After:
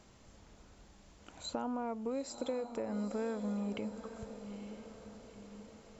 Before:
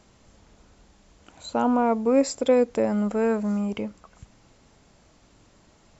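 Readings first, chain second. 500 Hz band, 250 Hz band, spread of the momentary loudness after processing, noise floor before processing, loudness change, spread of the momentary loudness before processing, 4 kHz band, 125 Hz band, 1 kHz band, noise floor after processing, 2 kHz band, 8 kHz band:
-15.5 dB, -13.5 dB, 15 LU, -59 dBFS, -16.0 dB, 11 LU, -8.0 dB, -11.0 dB, -15.0 dB, -60 dBFS, -14.0 dB, n/a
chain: compressor, threshold -32 dBFS, peak gain reduction 16.5 dB; on a send: diffused feedback echo 0.902 s, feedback 51%, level -10 dB; on the sum: gain -3.5 dB

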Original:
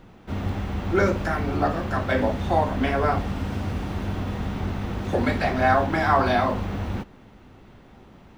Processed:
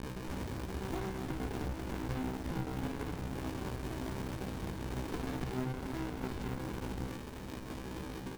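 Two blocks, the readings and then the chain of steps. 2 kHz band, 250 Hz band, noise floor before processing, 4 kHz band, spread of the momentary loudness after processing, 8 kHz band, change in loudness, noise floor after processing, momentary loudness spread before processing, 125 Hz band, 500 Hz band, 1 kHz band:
-18.0 dB, -11.5 dB, -50 dBFS, -11.0 dB, 5 LU, -3.0 dB, -15.5 dB, -44 dBFS, 10 LU, -12.0 dB, -17.0 dB, -20.0 dB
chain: on a send: tapped delay 65/107/286/585 ms -10/-15/-19.5/-14.5 dB; on the sum: limiter -15 dBFS, peak gain reduction 8 dB; notches 50/100/150/200/250/300/350 Hz; doubler 19 ms -11 dB; bit-crush 7-bit; tone controls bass -10 dB, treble +10 dB; resonator 64 Hz, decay 0.38 s, harmonics all, mix 100%; compressor 6:1, threshold -39 dBFS, peak gain reduction 12.5 dB; running maximum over 65 samples; gain +8.5 dB

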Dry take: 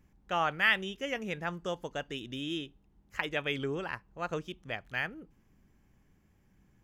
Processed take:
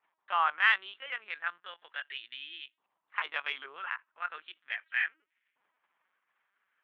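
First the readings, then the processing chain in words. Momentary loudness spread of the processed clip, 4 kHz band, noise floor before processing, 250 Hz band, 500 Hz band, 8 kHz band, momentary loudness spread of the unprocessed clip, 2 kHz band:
17 LU, -1.5 dB, -68 dBFS, under -25 dB, -15.0 dB, under -20 dB, 13 LU, +2.0 dB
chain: LPC vocoder at 8 kHz pitch kept; added harmonics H 2 -31 dB, 7 -45 dB, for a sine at -12 dBFS; LFO high-pass saw up 0.36 Hz 960–2100 Hz; gain -2 dB

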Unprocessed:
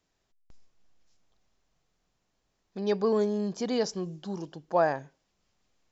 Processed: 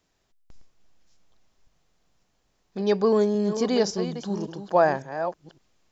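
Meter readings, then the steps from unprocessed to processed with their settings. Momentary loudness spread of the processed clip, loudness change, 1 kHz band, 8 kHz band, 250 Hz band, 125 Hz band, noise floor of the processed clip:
10 LU, +5.0 dB, +5.5 dB, n/a, +5.5 dB, +5.5 dB, -71 dBFS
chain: reverse delay 0.558 s, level -9.5 dB; gain +5 dB

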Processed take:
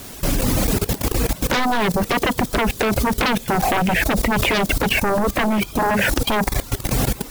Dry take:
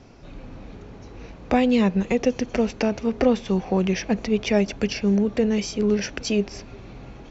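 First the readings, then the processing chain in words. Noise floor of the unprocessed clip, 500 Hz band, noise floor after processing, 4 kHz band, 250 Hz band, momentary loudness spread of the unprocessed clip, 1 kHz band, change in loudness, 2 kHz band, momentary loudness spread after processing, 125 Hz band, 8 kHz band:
-43 dBFS, +1.0 dB, -36 dBFS, +9.5 dB, 0.0 dB, 21 LU, +11.5 dB, +3.0 dB, +12.0 dB, 3 LU, +6.5 dB, n/a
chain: Bessel low-pass 1900 Hz, order 8; in parallel at -7 dB: requantised 6-bit, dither triangular; on the sum: reverb removal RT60 0.94 s; sine folder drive 18 dB, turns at -3.5 dBFS; level quantiser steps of 18 dB

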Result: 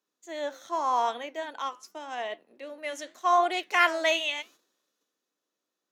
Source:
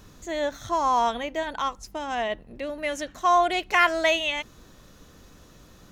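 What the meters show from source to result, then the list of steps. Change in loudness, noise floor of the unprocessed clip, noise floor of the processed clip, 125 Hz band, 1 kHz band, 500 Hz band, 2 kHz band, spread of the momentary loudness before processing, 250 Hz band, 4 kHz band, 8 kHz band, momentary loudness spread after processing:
-3.0 dB, -52 dBFS, under -85 dBFS, n/a, -3.5 dB, -4.0 dB, -3.0 dB, 12 LU, -7.0 dB, -2.5 dB, -3.5 dB, 17 LU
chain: gate -46 dBFS, range -11 dB; HPF 290 Hz 24 dB/oct; flange 0.85 Hz, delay 4.9 ms, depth 7.7 ms, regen -82%; three-band expander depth 40%

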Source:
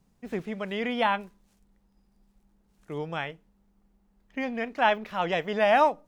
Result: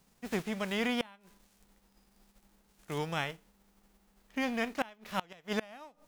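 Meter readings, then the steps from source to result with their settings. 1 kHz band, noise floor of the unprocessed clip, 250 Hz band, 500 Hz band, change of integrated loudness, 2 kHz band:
-13.5 dB, -68 dBFS, -2.5 dB, -10.5 dB, -7.5 dB, -7.5 dB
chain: spectral whitening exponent 0.6; flipped gate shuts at -17 dBFS, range -28 dB; gain -1.5 dB

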